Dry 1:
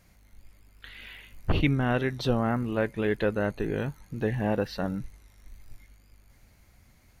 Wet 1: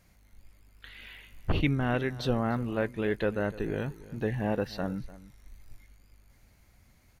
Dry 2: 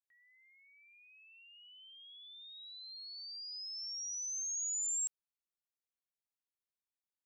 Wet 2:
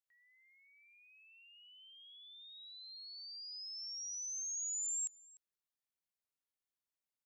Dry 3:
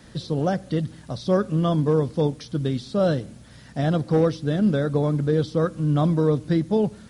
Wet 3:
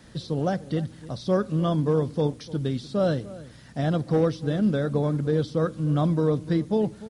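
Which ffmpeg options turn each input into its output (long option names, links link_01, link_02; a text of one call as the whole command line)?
ffmpeg -i in.wav -filter_complex "[0:a]asplit=2[link_01][link_02];[link_02]adelay=297.4,volume=-18dB,highshelf=frequency=4000:gain=-6.69[link_03];[link_01][link_03]amix=inputs=2:normalize=0,volume=-2.5dB" out.wav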